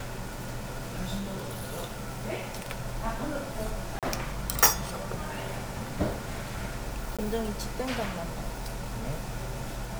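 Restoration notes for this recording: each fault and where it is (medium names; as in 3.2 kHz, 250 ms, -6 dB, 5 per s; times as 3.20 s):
1.18–2.09 s: clipped -30 dBFS
3.99–4.03 s: dropout 37 ms
7.17–7.19 s: dropout 16 ms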